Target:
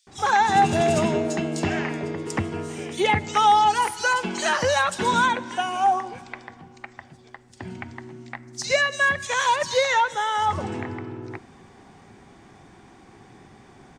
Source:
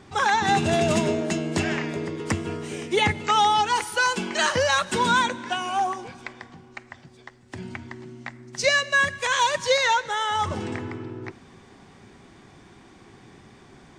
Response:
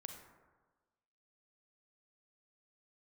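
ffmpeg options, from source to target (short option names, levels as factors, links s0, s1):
-filter_complex "[0:a]equalizer=f=780:t=o:w=0.35:g=5,acrossover=split=3800[s0][s1];[s0]adelay=70[s2];[s2][s1]amix=inputs=2:normalize=0"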